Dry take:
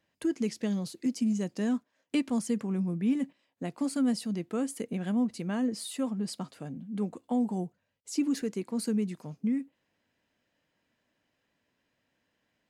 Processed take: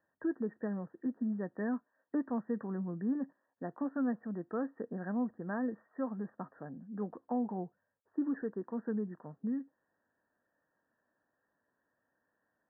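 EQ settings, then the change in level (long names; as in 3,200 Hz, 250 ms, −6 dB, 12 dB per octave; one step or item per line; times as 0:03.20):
linear-phase brick-wall low-pass 1,900 Hz
low-shelf EQ 290 Hz −11 dB
0.0 dB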